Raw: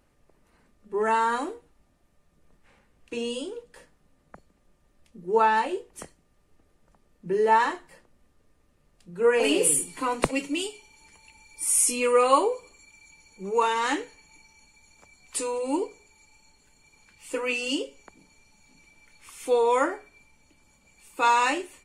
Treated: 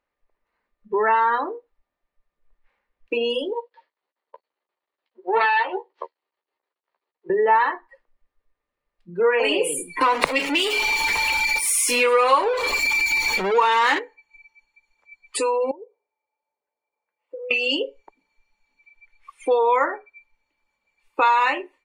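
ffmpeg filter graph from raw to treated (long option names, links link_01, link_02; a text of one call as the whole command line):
ffmpeg -i in.wav -filter_complex "[0:a]asettb=1/sr,asplit=3[link_01][link_02][link_03];[link_01]atrim=end=3.534[link_04];[link_02]atrim=start=3.53:end=7.3,asetpts=PTS-STARTPTS,afade=type=in:duration=0.004:curve=qsin,afade=type=out:start_time=3.766:duration=0.004:curve=qsin,aeval=exprs='max(val(0),0)':channel_layout=same,highpass=360,equalizer=frequency=370:width_type=q:width=4:gain=5,equalizer=frequency=920:width_type=q:width=4:gain=4,equalizer=frequency=3000:width_type=q:width=4:gain=3,equalizer=frequency=4400:width_type=q:width=4:gain=8,lowpass=frequency=4800:width=0.5412,lowpass=frequency=4800:width=1.3066,asplit=2[link_05][link_06];[link_06]adelay=13,volume=-5dB[link_07];[link_05][link_07]amix=inputs=2:normalize=0,atrim=end_sample=166257[link_08];[link_03]atrim=start=7.296[link_09];[link_04][link_08]acrossfade=duration=0.004:curve1=hsin:curve2=qsin[link_10];[link_10][link_09]acrossfade=duration=0.004:curve1=qsin:curve2=hsin,asettb=1/sr,asplit=3[link_11][link_12][link_13];[link_11]atrim=end=10.014[link_14];[link_12]atrim=start=10.01:end=13.99,asetpts=PTS-STARTPTS,afade=type=in:duration=0.004:curve=qsin,afade=type=out:start_time=3.976:duration=0.004:curve=qsin,aeval=exprs='val(0)+0.5*0.0562*sgn(val(0))':channel_layout=same,highshelf=frequency=3200:gain=4.5[link_15];[link_13]atrim=start=13.986[link_16];[link_14][link_15]acrossfade=duration=0.004:curve1=hsin:curve2=qsin[link_17];[link_17][link_16]acrossfade=duration=0.004:curve1=qsin:curve2=hsin,asettb=1/sr,asplit=3[link_18][link_19][link_20];[link_18]atrim=end=15.714[link_21];[link_19]atrim=start=15.71:end=17.51,asetpts=PTS-STARTPTS,afade=type=in:duration=0.004:curve=qsin,afade=type=out:start_time=1.796:duration=0.004:curve=qsin,bandpass=frequency=580:width_type=q:width=2.2,acompressor=threshold=-46dB:ratio=8:attack=3.2:release=140:knee=1:detection=peak[link_22];[link_20]atrim=start=17.506[link_23];[link_21][link_22]acrossfade=duration=0.004:curve1=hsin:curve2=qsin[link_24];[link_24][link_23]acrossfade=duration=0.004:curve1=qsin:curve2=hsin,afftdn=noise_reduction=29:noise_floor=-37,equalizer=frequency=125:width_type=o:width=1:gain=-7,equalizer=frequency=500:width_type=o:width=1:gain=7,equalizer=frequency=1000:width_type=o:width=1:gain=10,equalizer=frequency=2000:width_type=o:width=1:gain=11,equalizer=frequency=4000:width_type=o:width=1:gain=8,equalizer=frequency=8000:width_type=o:width=1:gain=-6,acompressor=threshold=-30dB:ratio=2.5,volume=6.5dB" out.wav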